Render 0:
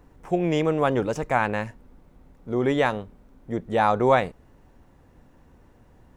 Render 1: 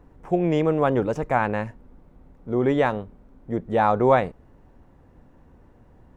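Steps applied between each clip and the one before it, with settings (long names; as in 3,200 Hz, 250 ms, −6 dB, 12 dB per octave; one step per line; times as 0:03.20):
high-shelf EQ 2,400 Hz −10.5 dB
level +2 dB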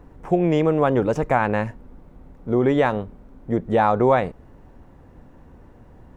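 downward compressor 2 to 1, threshold −22 dBFS, peak gain reduction 6 dB
level +5.5 dB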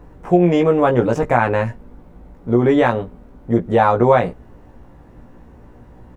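double-tracking delay 17 ms −3.5 dB
level +2.5 dB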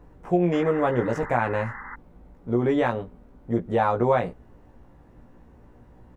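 sound drawn into the spectrogram noise, 0:00.52–0:01.96, 770–2,100 Hz −31 dBFS
level −8 dB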